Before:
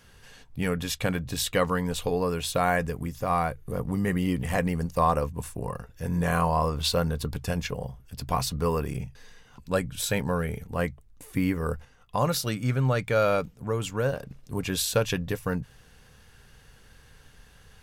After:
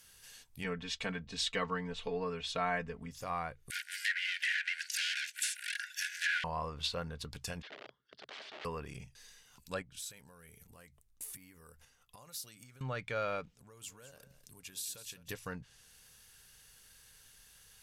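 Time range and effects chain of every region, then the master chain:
0:00.64–0:03.11: high-frequency loss of the air 81 metres + comb filter 4.5 ms, depth 94% + one half of a high-frequency compander decoder only
0:03.70–0:06.44: mid-hump overdrive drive 34 dB, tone 2,000 Hz, clips at −10 dBFS + linear-phase brick-wall high-pass 1,400 Hz
0:07.62–0:08.65: phaser with its sweep stopped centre 2,500 Hz, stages 6 + wrap-around overflow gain 32 dB + loudspeaker in its box 340–3,400 Hz, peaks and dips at 420 Hz +5 dB, 640 Hz +7 dB, 970 Hz −3 dB
0:09.82–0:12.81: downward compressor 16 to 1, threshold −39 dBFS + one half of a high-frequency compander decoder only
0:13.55–0:15.29: downward compressor 5 to 1, threshold −41 dBFS + single-tap delay 204 ms −12 dB
whole clip: treble cut that deepens with the level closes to 2,400 Hz, closed at −22.5 dBFS; first-order pre-emphasis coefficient 0.9; level +4 dB

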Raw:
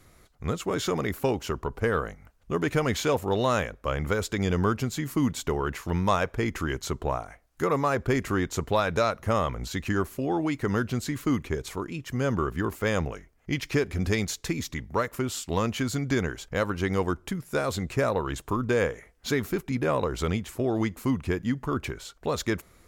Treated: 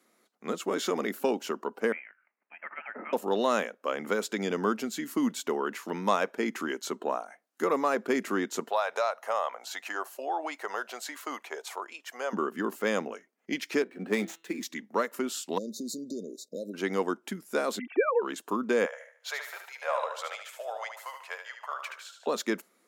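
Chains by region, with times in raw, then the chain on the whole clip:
0:01.92–0:03.13: mu-law and A-law mismatch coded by mu + Bessel high-pass filter 2,300 Hz, order 4 + voice inversion scrambler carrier 3,600 Hz
0:08.70–0:12.33: high-pass with resonance 720 Hz, resonance Q 2.1 + downward compressor 1.5 to 1, threshold −30 dBFS
0:13.82–0:14.63: running median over 9 samples + hum removal 165 Hz, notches 25 + multiband upward and downward expander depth 70%
0:15.58–0:16.74: downward compressor 12 to 1, threshold −27 dBFS + linear-phase brick-wall band-stop 660–3,600 Hz
0:17.79–0:18.22: three sine waves on the formant tracks + comb filter 2.6 ms, depth 80%
0:18.85–0:22.27: Butterworth high-pass 560 Hz 48 dB per octave + high-shelf EQ 4,400 Hz −5 dB + repeating echo 74 ms, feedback 49%, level −7 dB
whole clip: elliptic high-pass filter 210 Hz, stop band 60 dB; noise reduction from a noise print of the clip's start 7 dB; level −1 dB

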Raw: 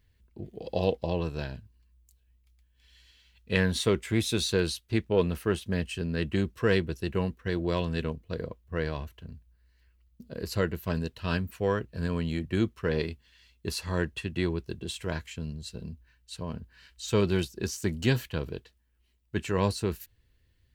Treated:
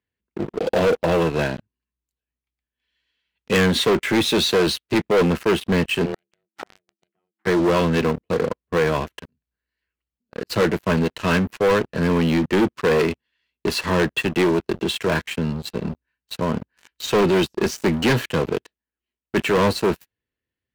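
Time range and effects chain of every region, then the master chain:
0:06.05–0:07.47: parametric band 230 Hz −12 dB 2.3 octaves + gate with flip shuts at −31 dBFS, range −28 dB + ring modulation 270 Hz
0:09.01–0:10.50: high-shelf EQ 2,700 Hz +7.5 dB + volume swells 244 ms
whole clip: high-pass filter 42 Hz 12 dB per octave; three-way crossover with the lows and the highs turned down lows −17 dB, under 170 Hz, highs −14 dB, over 3,300 Hz; leveller curve on the samples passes 5

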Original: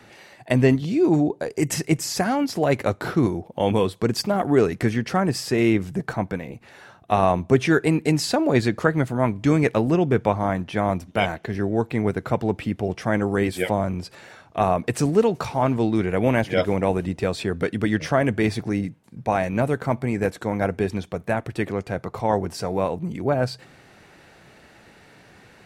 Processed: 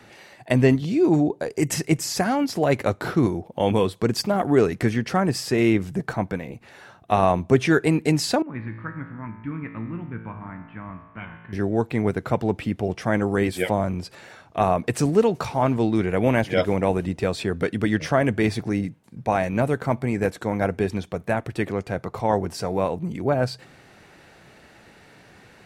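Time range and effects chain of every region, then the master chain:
0:08.42–0:11.53: inverse Chebyshev low-pass filter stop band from 8,900 Hz, stop band 70 dB + flat-topped bell 540 Hz −13.5 dB 1.3 octaves + tuned comb filter 56 Hz, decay 1.4 s, mix 80%
whole clip: no processing

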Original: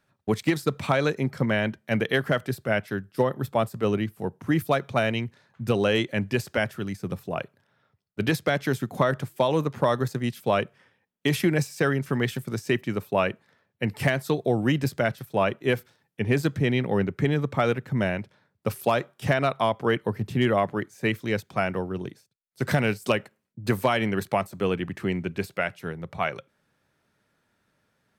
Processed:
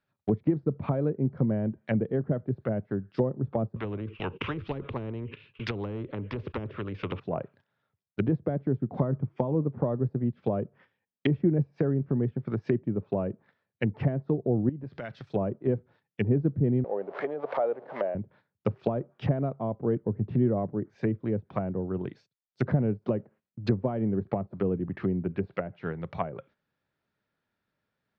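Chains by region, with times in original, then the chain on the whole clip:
0:03.76–0:07.20: noise gate −53 dBFS, range −17 dB + drawn EQ curve 100 Hz 0 dB, 200 Hz −12 dB, 440 Hz −5 dB, 720 Hz −29 dB, 1,100 Hz −13 dB, 1,800 Hz −15 dB, 2,700 Hz +12 dB, 4,200 Hz −11 dB, 11,000 Hz −19 dB + every bin compressed towards the loudest bin 4 to 1
0:09.03–0:09.55: parametric band 4,000 Hz −10 dB 0.38 octaves + comb filter 0.9 ms, depth 30%
0:14.69–0:15.32: downward compressor 3 to 1, threshold −38 dBFS + high-shelf EQ 9,700 Hz −12 dB
0:16.84–0:18.15: converter with a step at zero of −31 dBFS + high-pass with resonance 600 Hz, resonance Q 2.4 + spectral tilt +2 dB per octave
whole clip: low-pass filter 5,000 Hz 24 dB per octave; treble cut that deepens with the level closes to 410 Hz, closed at −23.5 dBFS; noise gate −55 dBFS, range −11 dB

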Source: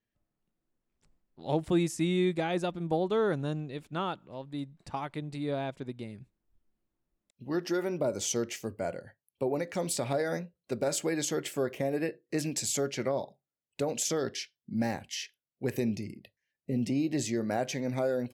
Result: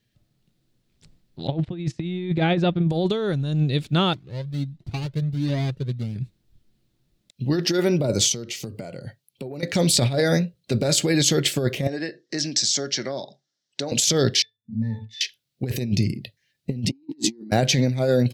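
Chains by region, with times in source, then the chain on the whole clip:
0:01.47–0:02.90: low-pass filter 2,500 Hz + noise gate −42 dBFS, range −16 dB
0:04.13–0:06.16: running median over 41 samples + flanger whose copies keep moving one way rising 1.4 Hz
0:08.32–0:09.63: high-pass filter 110 Hz + notch filter 1,700 Hz, Q 6.2 + downward compressor 8 to 1, threshold −43 dBFS
0:11.87–0:13.92: downward compressor 1.5 to 1, threshold −46 dBFS + loudspeaker in its box 280–7,100 Hz, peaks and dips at 470 Hz −6 dB, 1,700 Hz +5 dB, 2,500 Hz −8 dB, 5,600 Hz +9 dB
0:14.42–0:15.21: high-shelf EQ 4,100 Hz +9 dB + resonances in every octave A, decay 0.17 s + downward compressor 1.5 to 1, threshold −51 dBFS
0:16.92–0:17.51: Butterworth high-pass 210 Hz + low shelf with overshoot 440 Hz +10 dB, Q 3
whole clip: octave-band graphic EQ 125/1,000/4,000 Hz +11/−6/+10 dB; compressor whose output falls as the input rises −29 dBFS, ratio −0.5; level +7 dB

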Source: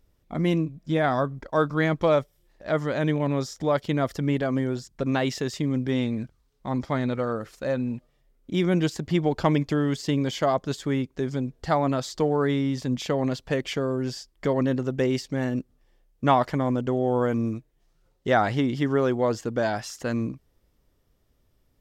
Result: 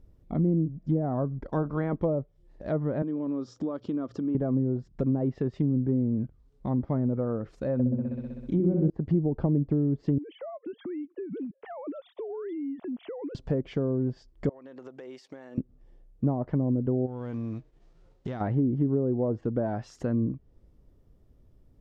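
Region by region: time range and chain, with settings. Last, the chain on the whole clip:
0:01.48–0:02.00: ceiling on every frequency bin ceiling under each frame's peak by 13 dB + noise that follows the level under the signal 32 dB
0:03.02–0:04.35: mains-hum notches 60/120/180 Hz + downward compressor 3 to 1, threshold −31 dBFS + loudspeaker in its box 140–7,400 Hz, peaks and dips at 140 Hz −10 dB, 290 Hz +6 dB, 730 Hz −5 dB, 1,200 Hz +6 dB, 2,000 Hz −10 dB
0:07.73–0:08.90: flutter between parallel walls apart 10.9 metres, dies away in 1.3 s + one half of a high-frequency compander encoder only
0:10.18–0:13.35: three sine waves on the formant tracks + downward compressor 4 to 1, threshold −39 dBFS
0:14.49–0:15.58: high-pass filter 710 Hz + high-shelf EQ 7,900 Hz −11 dB + downward compressor 8 to 1, threshold −42 dBFS
0:17.05–0:18.40: spectral envelope flattened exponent 0.6 + low-pass filter 5,800 Hz + downward compressor 3 to 1, threshold −37 dBFS
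whole clip: downward compressor 1.5 to 1, threshold −42 dBFS; tilt shelving filter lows +9 dB, about 820 Hz; treble cut that deepens with the level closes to 500 Hz, closed at −20.5 dBFS

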